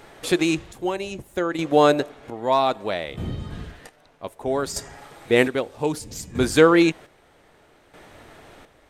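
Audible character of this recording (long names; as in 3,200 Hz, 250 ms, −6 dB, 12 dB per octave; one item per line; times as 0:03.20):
chopped level 0.63 Hz, depth 65%, duty 45%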